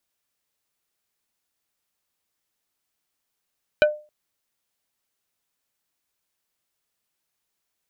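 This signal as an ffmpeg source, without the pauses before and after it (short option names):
-f lavfi -i "aevalsrc='0.316*pow(10,-3*t/0.33)*sin(2*PI*602*t)+0.2*pow(10,-3*t/0.11)*sin(2*PI*1505*t)+0.126*pow(10,-3*t/0.063)*sin(2*PI*2408*t)+0.0794*pow(10,-3*t/0.048)*sin(2*PI*3010*t)+0.0501*pow(10,-3*t/0.035)*sin(2*PI*3913*t)':d=0.27:s=44100"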